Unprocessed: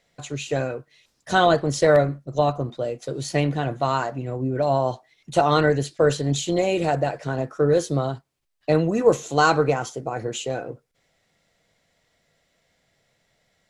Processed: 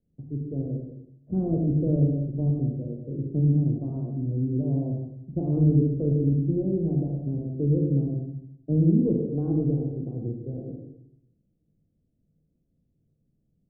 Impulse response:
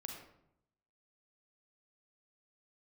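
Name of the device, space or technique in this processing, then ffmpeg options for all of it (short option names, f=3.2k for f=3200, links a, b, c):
next room: -filter_complex "[0:a]lowpass=f=310:w=0.5412,lowpass=f=310:w=1.3066[a];[1:a]atrim=start_sample=2205[b];[a][b]afir=irnorm=-1:irlink=0,volume=5.5dB"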